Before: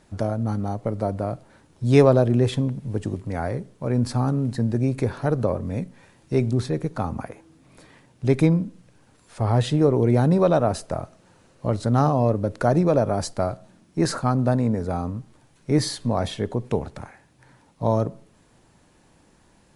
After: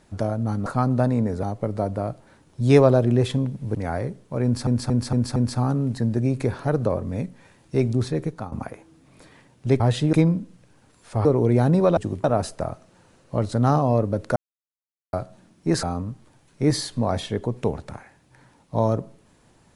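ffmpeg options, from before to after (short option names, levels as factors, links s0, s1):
-filter_complex "[0:a]asplit=17[s0][s1][s2][s3][s4][s5][s6][s7][s8][s9][s10][s11][s12][s13][s14][s15][s16];[s0]atrim=end=0.662[s17];[s1]atrim=start=14.138:end=14.912[s18];[s2]atrim=start=0.658:end=2.982[s19];[s3]atrim=start=3.248:end=4.172[s20];[s4]atrim=start=3.938:end=4.172[s21];[s5]atrim=start=3.938:end=4.172[s22];[s6]atrim=start=3.938:end=4.172[s23];[s7]atrim=start=3.938:end=7.1,asetpts=PTS-STARTPTS,afade=t=out:st=2.892:d=0.27:silence=0.211349[s24];[s8]atrim=start=7.1:end=8.382,asetpts=PTS-STARTPTS,afade=t=in:d=0.004:c=hsin:silence=0.211349[s25];[s9]atrim=start=9.498:end=9.832[s26];[s10]atrim=start=8.378:end=9.502[s27];[s11]atrim=start=9.828:end=10.552[s28];[s12]atrim=start=2.978:end=3.252[s29];[s13]atrim=start=10.548:end=12.67,asetpts=PTS-STARTPTS,afade=t=out:st=2.118:d=0.004:c=hsin[s30];[s14]atrim=start=12.67:end=13.44,asetpts=PTS-STARTPTS,volume=0[s31];[s15]atrim=start=13.44:end=14.142,asetpts=PTS-STARTPTS,afade=t=in:d=0.004:c=hsin[s32];[s16]atrim=start=14.908[s33];[s17][s18]acrossfade=d=0.004:c1=hsin:c2=hsin[s34];[s34][s19]acrossfade=d=0.004:c1=hsin:c2=hsin[s35];[s35][s20]acrossfade=d=0.004:c1=hsin:c2=hsin[s36];[s36][s21]acrossfade=d=0.004:c1=hsin:c2=hsin[s37];[s37][s22]acrossfade=d=0.004:c1=hsin:c2=hsin[s38];[s38][s23]acrossfade=d=0.004:c1=hsin:c2=hsin[s39];[s24][s25]concat=n=2:v=0:a=1[s40];[s39][s40]acrossfade=d=0.004:c1=hsin:c2=hsin[s41];[s41][s26]acrossfade=d=0.004:c1=hsin:c2=hsin[s42];[s42][s27]acrossfade=d=0.004:c1=hsin:c2=hsin[s43];[s43][s28]acrossfade=d=0.004:c1=hsin:c2=hsin[s44];[s44][s29]acrossfade=d=0.004:c1=hsin:c2=hsin[s45];[s30][s31][s32]concat=n=3:v=0:a=1[s46];[s45][s46]acrossfade=d=0.004:c1=hsin:c2=hsin[s47];[s47][s33]acrossfade=d=0.004:c1=hsin:c2=hsin"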